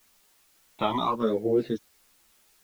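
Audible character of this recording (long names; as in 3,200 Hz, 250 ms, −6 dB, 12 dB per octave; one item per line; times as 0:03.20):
sample-and-hold tremolo, depth 70%
phaser sweep stages 12, 0.83 Hz, lowest notch 480–1,100 Hz
a quantiser's noise floor 12 bits, dither triangular
a shimmering, thickened sound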